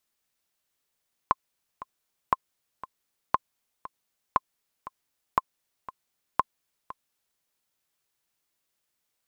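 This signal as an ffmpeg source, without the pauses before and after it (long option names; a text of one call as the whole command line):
ffmpeg -f lavfi -i "aevalsrc='pow(10,(-7-17*gte(mod(t,2*60/118),60/118))/20)*sin(2*PI*1050*mod(t,60/118))*exp(-6.91*mod(t,60/118)/0.03)':duration=6.1:sample_rate=44100" out.wav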